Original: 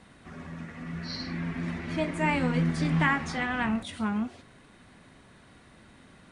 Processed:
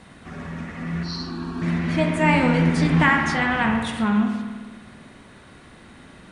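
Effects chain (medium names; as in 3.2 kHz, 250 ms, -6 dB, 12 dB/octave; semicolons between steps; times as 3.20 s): 1.03–1.62 s: static phaser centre 560 Hz, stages 6; spring tank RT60 1.5 s, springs 53 ms, chirp 20 ms, DRR 4 dB; trim +7 dB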